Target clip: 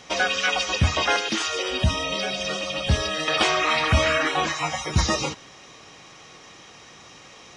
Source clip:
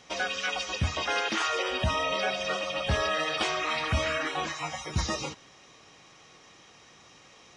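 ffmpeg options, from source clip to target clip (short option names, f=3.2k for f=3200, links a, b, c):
-filter_complex "[0:a]asettb=1/sr,asplit=3[a][b][c];[a]atrim=end=1.164[d];[b]atrim=start=1.16:end=3.28,asetpts=PTS-STARTPTS,afade=t=in:d=0.004:c=qsin,afade=t=out:st=2.116:d=0.004:c=qsin,acrossover=split=380|3000[e][f][g];[f]acompressor=threshold=-42dB:ratio=3[h];[e][h][g]amix=inputs=3:normalize=0[i];[c]atrim=start=3.276[j];[d][i]acrossfade=d=0.004:c1=hsin:c2=qsin[k];[k][j]acrossfade=d=0.004:c1=qsin:c2=hsin,volume=8dB"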